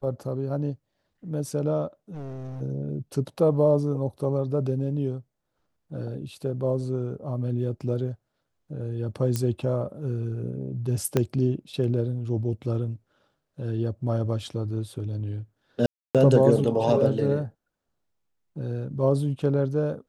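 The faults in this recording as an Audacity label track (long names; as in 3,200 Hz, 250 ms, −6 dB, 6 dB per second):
2.140000	2.620000	clipping −33 dBFS
9.360000	9.360000	click −13 dBFS
11.170000	11.170000	click −9 dBFS
15.860000	16.150000	drop-out 287 ms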